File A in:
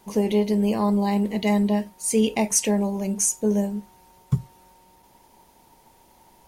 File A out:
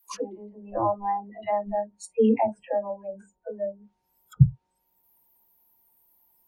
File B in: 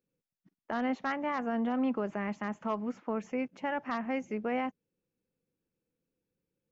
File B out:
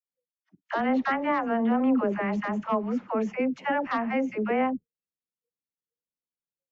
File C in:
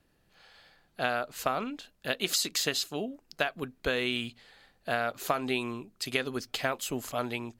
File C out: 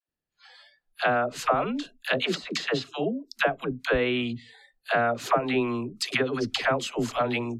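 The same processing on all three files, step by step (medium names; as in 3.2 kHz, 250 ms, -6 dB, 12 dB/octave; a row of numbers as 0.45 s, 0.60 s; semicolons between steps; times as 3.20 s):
low-pass that closes with the level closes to 820 Hz, closed at -22.5 dBFS; spectral noise reduction 29 dB; phase dispersion lows, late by 88 ms, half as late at 500 Hz; normalise loudness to -27 LUFS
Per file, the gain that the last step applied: +6.0 dB, +7.0 dB, +7.0 dB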